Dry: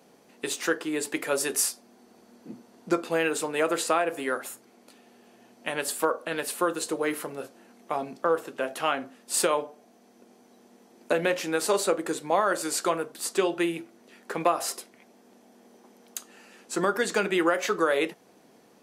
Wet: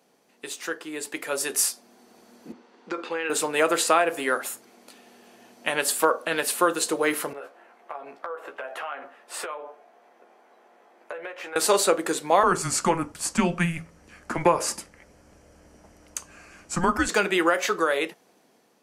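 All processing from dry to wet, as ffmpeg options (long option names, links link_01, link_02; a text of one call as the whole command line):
ffmpeg -i in.wav -filter_complex "[0:a]asettb=1/sr,asplit=3[link_01][link_02][link_03];[link_01]atrim=end=2.524[link_04];[link_02]atrim=start=2.52:end=3.3,asetpts=PTS-STARTPTS,afade=type=in:duration=0.004:curve=qsin,afade=type=out:start_time=0.776:duration=0.004:curve=qsin,bandreject=frequency=660:width=5.2,acompressor=threshold=-26dB:ratio=10:attack=3.2:release=140:knee=1:detection=peak,highpass=310,lowpass=3600[link_05];[link_03]atrim=start=3.296[link_06];[link_04][link_05]acrossfade=duration=0.004:curve1=hsin:curve2=qsin[link_07];[link_07][link_06]acrossfade=duration=0.004:curve1=qsin:curve2=hsin,asettb=1/sr,asplit=3[link_08][link_09][link_10];[link_08]atrim=end=7.334[link_11];[link_09]atrim=start=7.33:end=11.56,asetpts=PTS-STARTPTS,afade=type=in:duration=0.004:curve=qsin,afade=type=out:start_time=4.226:duration=0.004:curve=qsin,acrossover=split=420 2400:gain=0.0794 1 0.112[link_12][link_13][link_14];[link_12][link_13][link_14]amix=inputs=3:normalize=0,acompressor=threshold=-38dB:ratio=6:attack=3.2:release=140:knee=1:detection=peak,asplit=2[link_15][link_16];[link_16]adelay=14,volume=-6.5dB[link_17];[link_15][link_17]amix=inputs=2:normalize=0,atrim=end_sample=186543[link_18];[link_10]atrim=start=11.556[link_19];[link_11][link_18]acrossfade=duration=0.004:curve1=hsin:curve2=qsin[link_20];[link_20][link_19]acrossfade=duration=0.004:curve1=qsin:curve2=hsin,asettb=1/sr,asplit=3[link_21][link_22][link_23];[link_21]atrim=end=12.434[link_24];[link_22]atrim=start=12.43:end=17.09,asetpts=PTS-STARTPTS,afade=type=in:duration=0.004:curve=qsin,afade=type=out:start_time=4.656:duration=0.004:curve=qsin,equalizer=frequency=3900:width_type=o:width=0.47:gain=-11.5,afreqshift=-170,lowpass=8900[link_25];[link_23]atrim=start=17.086[link_26];[link_24][link_25]acrossfade=duration=0.004:curve1=hsin:curve2=qsin[link_27];[link_27][link_26]acrossfade=duration=0.004:curve1=qsin:curve2=hsin,lowshelf=frequency=490:gain=-6,dynaudnorm=framelen=630:gausssize=5:maxgain=12.5dB,volume=-4dB" out.wav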